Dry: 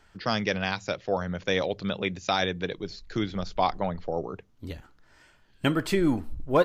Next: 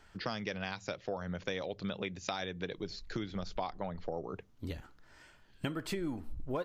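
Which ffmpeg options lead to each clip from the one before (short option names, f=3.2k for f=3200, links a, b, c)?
-af "acompressor=threshold=-33dB:ratio=6,volume=-1dB"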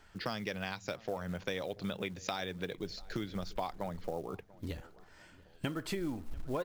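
-filter_complex "[0:a]acrusher=bits=6:mode=log:mix=0:aa=0.000001,asplit=2[a][b];[b]adelay=690,lowpass=f=2k:p=1,volume=-21.5dB,asplit=2[c][d];[d]adelay=690,lowpass=f=2k:p=1,volume=0.46,asplit=2[e][f];[f]adelay=690,lowpass=f=2k:p=1,volume=0.46[g];[a][c][e][g]amix=inputs=4:normalize=0"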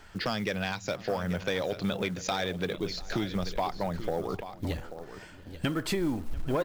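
-af "aecho=1:1:837:0.211,asoftclip=type=tanh:threshold=-28dB,volume=8.5dB"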